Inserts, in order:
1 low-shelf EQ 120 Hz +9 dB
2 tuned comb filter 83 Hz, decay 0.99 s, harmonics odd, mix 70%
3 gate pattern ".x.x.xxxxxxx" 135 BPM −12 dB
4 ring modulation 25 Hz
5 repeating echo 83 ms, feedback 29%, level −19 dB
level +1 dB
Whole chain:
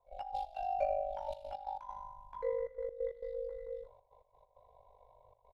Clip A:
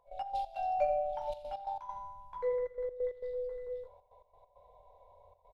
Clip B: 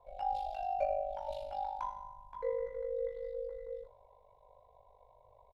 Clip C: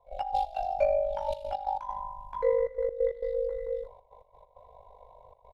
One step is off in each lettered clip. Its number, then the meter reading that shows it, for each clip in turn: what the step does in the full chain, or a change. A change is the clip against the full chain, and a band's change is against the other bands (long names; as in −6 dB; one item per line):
4, change in crest factor −2.0 dB
3, change in momentary loudness spread −1 LU
2, change in crest factor −2.5 dB